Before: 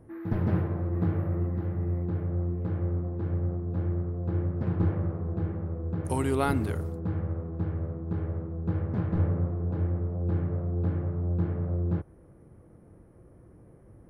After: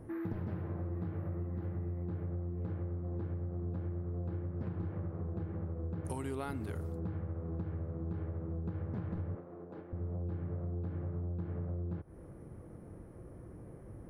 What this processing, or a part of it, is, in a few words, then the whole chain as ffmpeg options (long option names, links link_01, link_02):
serial compression, peaks first: -filter_complex "[0:a]acompressor=threshold=-34dB:ratio=6,acompressor=threshold=-42dB:ratio=2,asettb=1/sr,asplit=3[link_01][link_02][link_03];[link_01]atrim=end=9.354[link_04];[link_02]atrim=start=9.35:end=9.93,asetpts=PTS-STARTPTS,afade=type=in:duration=0.004:curve=qsin,afade=type=out:start_time=0.576:duration=0.004:curve=qsin,highpass=300[link_05];[link_03]atrim=start=9.926[link_06];[link_04][link_05]acrossfade=duration=0.004:curve1=hsin:curve2=qsin[link_07];[link_07][link_06]acrossfade=duration=0.004:curve1=qsin:curve2=hsin,volume=3.5dB"